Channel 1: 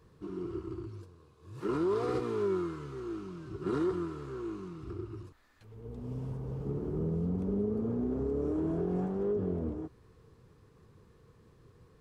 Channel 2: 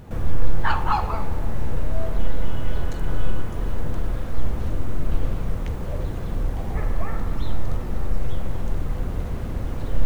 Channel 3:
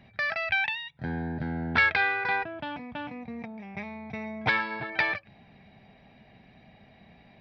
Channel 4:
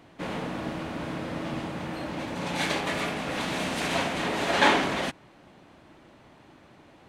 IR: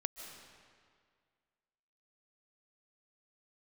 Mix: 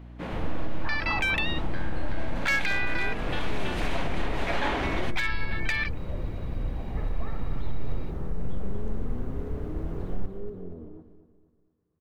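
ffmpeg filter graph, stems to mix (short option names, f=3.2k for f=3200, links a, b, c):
-filter_complex "[0:a]agate=range=-12dB:threshold=-55dB:ratio=16:detection=peak,lowpass=f=1.2k:p=1,adelay=1150,volume=-8dB,asplit=2[a][b];[b]volume=-12.5dB[c];[1:a]highshelf=f=2.7k:g=-11.5,alimiter=limit=-12dB:level=0:latency=1,adelay=200,volume=-6.5dB,asplit=2[d][e];[e]volume=-9dB[f];[2:a]highpass=830,tiltshelf=f=1.3k:g=-9,aeval=exprs='clip(val(0),-1,0.141)':c=same,adelay=700,volume=0dB[g];[3:a]equalizer=f=8.1k:t=o:w=1.8:g=-8.5,aeval=exprs='val(0)+0.01*(sin(2*PI*60*n/s)+sin(2*PI*2*60*n/s)/2+sin(2*PI*3*60*n/s)/3+sin(2*PI*4*60*n/s)/4+sin(2*PI*5*60*n/s)/5)':c=same,volume=-2.5dB[h];[c][f]amix=inputs=2:normalize=0,aecho=0:1:237|474|711|948|1185|1422:1|0.41|0.168|0.0689|0.0283|0.0116[i];[a][d][g][h][i]amix=inputs=5:normalize=0,alimiter=limit=-16.5dB:level=0:latency=1:release=167"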